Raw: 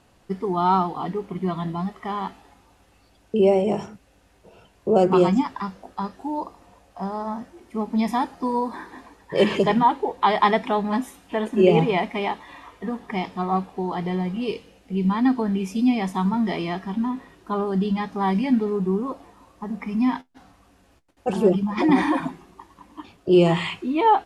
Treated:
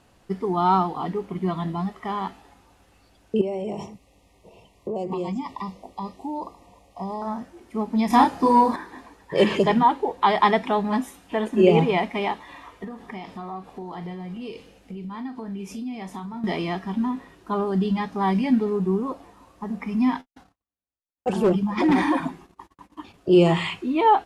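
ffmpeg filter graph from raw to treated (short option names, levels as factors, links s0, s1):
-filter_complex "[0:a]asettb=1/sr,asplit=3[s0][s1][s2];[s0]atrim=end=3.414[s3];[s1]atrim=start=3.41:end=7.22,asetpts=PTS-STARTPTS,afade=t=in:d=0.004:c=qsin,afade=t=out:st=3.806:d=0.004:c=qsin,acompressor=threshold=0.0501:ratio=5:attack=3.2:release=140:knee=1:detection=peak,asuperstop=centerf=1500:order=20:qfactor=2.4[s4];[s2]atrim=start=7.216[s5];[s3][s4]acrossfade=d=0.004:c1=hsin:c2=qsin[s6];[s6][s5]acrossfade=d=0.004:c1=qsin:c2=hsin,asettb=1/sr,asplit=3[s7][s8][s9];[s7]atrim=end=8.104[s10];[s8]atrim=start=8.1:end=8.76,asetpts=PTS-STARTPTS,afade=t=in:d=0.004:c=qsin,afade=t=out:st=0.656:d=0.004:c=qsin,asplit=2[s11][s12];[s12]adelay=30,volume=0.708[s13];[s11][s13]amix=inputs=2:normalize=0,atrim=end_sample=29106,acontrast=59[s14];[s9]atrim=start=8.756[s15];[s10][s14]acrossfade=d=0.004:c1=hsin:c2=qsin[s16];[s16][s15]acrossfade=d=0.004:c1=qsin:c2=hsin,asettb=1/sr,asplit=3[s17][s18][s19];[s17]atrim=end=12.844[s20];[s18]atrim=start=12.84:end=16.44,asetpts=PTS-STARTPTS,afade=t=in:d=0.004:c=qsin,afade=t=out:st=3.596:d=0.004:c=qsin,acompressor=threshold=0.0224:ratio=4:attack=3.2:release=140:knee=1:detection=peak,asplit=2[s21][s22];[s22]adelay=40,volume=0.282[s23];[s21][s23]amix=inputs=2:normalize=0,atrim=end_sample=158760[s24];[s19]atrim=start=16.436[s25];[s20][s24]acrossfade=d=0.004:c1=hsin:c2=qsin[s26];[s26][s25]acrossfade=d=0.004:c1=qsin:c2=hsin,asettb=1/sr,asplit=3[s27][s28][s29];[s27]atrim=end=20.144[s30];[s28]atrim=start=20.14:end=23.14,asetpts=PTS-STARTPTS,afade=t=in:d=0.004:c=qsin,afade=t=out:st=2.996:d=0.004:c=qsin,agate=range=0.00794:threshold=0.00282:ratio=16:release=100:detection=peak,asoftclip=type=hard:threshold=0.2[s31];[s29]atrim=start=23.136[s32];[s30][s31]acrossfade=d=0.004:c1=hsin:c2=qsin[s33];[s33][s32]acrossfade=d=0.004:c1=qsin:c2=hsin"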